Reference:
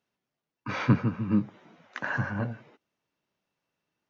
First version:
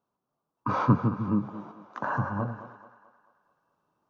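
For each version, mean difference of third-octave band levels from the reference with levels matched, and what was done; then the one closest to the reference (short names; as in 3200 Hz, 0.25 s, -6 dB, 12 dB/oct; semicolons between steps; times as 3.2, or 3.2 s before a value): 4.5 dB: random-step tremolo; resonant high shelf 1500 Hz -9.5 dB, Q 3; thinning echo 0.218 s, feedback 50%, high-pass 330 Hz, level -13.5 dB; in parallel at +3 dB: compressor, threshold -34 dBFS, peak gain reduction 16 dB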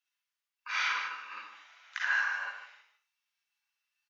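14.5 dB: Bessel high-pass 1800 Hz, order 4; spectral noise reduction 7 dB; echo 0.151 s -10 dB; Schroeder reverb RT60 0.37 s, DRR -2.5 dB; gain +3.5 dB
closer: first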